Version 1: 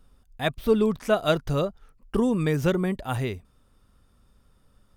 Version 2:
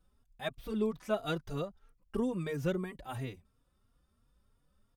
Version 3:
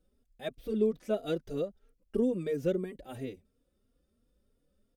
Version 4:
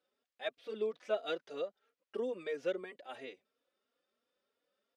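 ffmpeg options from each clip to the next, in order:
-filter_complex "[0:a]asplit=2[s0][s1];[s1]adelay=3.6,afreqshift=3[s2];[s0][s2]amix=inputs=2:normalize=1,volume=0.376"
-af "equalizer=f=125:t=o:w=1:g=-5,equalizer=f=250:t=o:w=1:g=6,equalizer=f=500:t=o:w=1:g=10,equalizer=f=1000:t=o:w=1:g=-11,volume=0.75"
-af "highpass=760,lowpass=4100,volume=1.5"

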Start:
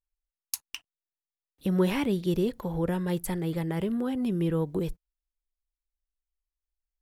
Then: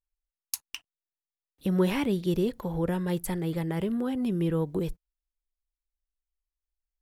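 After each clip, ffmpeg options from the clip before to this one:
-af anull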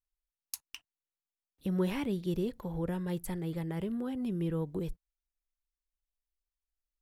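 -af "lowshelf=f=170:g=4.5,volume=0.422"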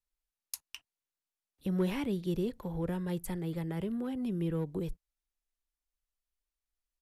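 -filter_complex "[0:a]acrossover=split=330|470|2200[s0][s1][s2][s3];[s2]aeval=exprs='clip(val(0),-1,0.00891)':c=same[s4];[s0][s1][s4][s3]amix=inputs=4:normalize=0,aresample=32000,aresample=44100"

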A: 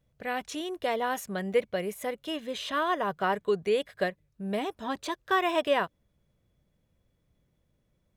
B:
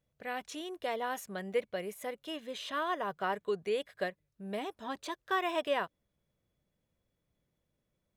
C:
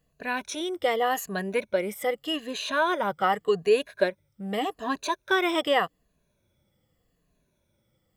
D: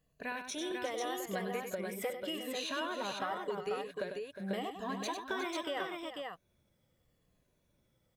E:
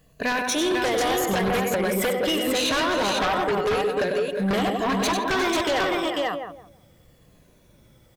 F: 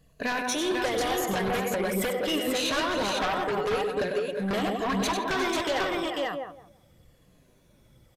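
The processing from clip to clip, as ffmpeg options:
-af "lowshelf=f=170:g=-7,volume=0.531"
-af "afftfilt=real='re*pow(10,12/40*sin(2*PI*(1.5*log(max(b,1)*sr/1024/100)/log(2)-(-0.84)*(pts-256)/sr)))':imag='im*pow(10,12/40*sin(2*PI*(1.5*log(max(b,1)*sr/1024/100)/log(2)-(-0.84)*(pts-256)/sr)))':win_size=1024:overlap=0.75,volume=2.51"
-filter_complex "[0:a]acompressor=threshold=0.0282:ratio=6,asplit=2[s0][s1];[s1]aecho=0:1:98|359|493:0.422|0.266|0.631[s2];[s0][s2]amix=inputs=2:normalize=0,volume=0.562"
-filter_complex "[0:a]asplit=2[s0][s1];[s1]adelay=165,lowpass=f=880:p=1,volume=0.501,asplit=2[s2][s3];[s3]adelay=165,lowpass=f=880:p=1,volume=0.29,asplit=2[s4][s5];[s5]adelay=165,lowpass=f=880:p=1,volume=0.29,asplit=2[s6][s7];[s7]adelay=165,lowpass=f=880:p=1,volume=0.29[s8];[s0][s2][s4][s6][s8]amix=inputs=5:normalize=0,aeval=exprs='0.0708*sin(PI/2*3.16*val(0)/0.0708)':c=same,volume=1.58"
-af "flanger=delay=0.2:depth=7.9:regen=67:speed=1:shape=sinusoidal,aresample=32000,aresample=44100"

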